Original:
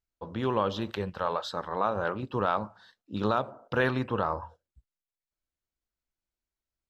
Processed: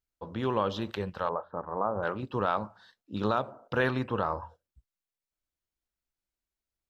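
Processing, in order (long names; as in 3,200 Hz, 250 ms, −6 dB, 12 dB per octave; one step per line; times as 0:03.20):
0:01.29–0:02.03: low-pass filter 1,200 Hz 24 dB per octave
level −1 dB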